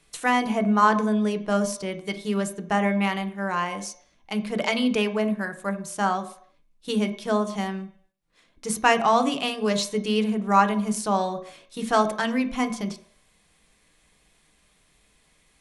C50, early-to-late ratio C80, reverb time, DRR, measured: 13.0 dB, 15.5 dB, 0.65 s, 6.5 dB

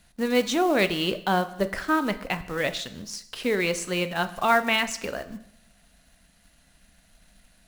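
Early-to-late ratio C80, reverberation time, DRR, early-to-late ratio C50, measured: 17.5 dB, 0.75 s, 11.0 dB, 15.0 dB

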